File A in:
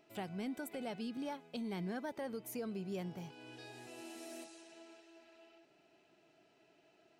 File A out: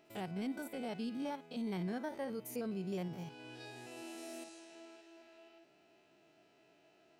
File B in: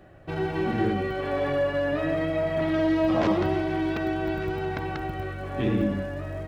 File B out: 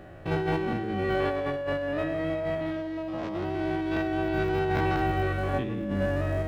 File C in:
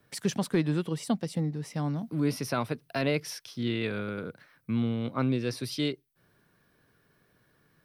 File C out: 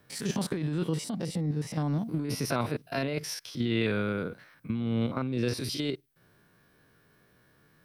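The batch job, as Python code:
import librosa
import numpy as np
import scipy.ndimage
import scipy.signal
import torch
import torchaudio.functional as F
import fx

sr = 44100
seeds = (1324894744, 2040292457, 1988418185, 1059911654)

y = fx.spec_steps(x, sr, hold_ms=50)
y = fx.over_compress(y, sr, threshold_db=-31.0, ratio=-1.0)
y = y * librosa.db_to_amplitude(2.5)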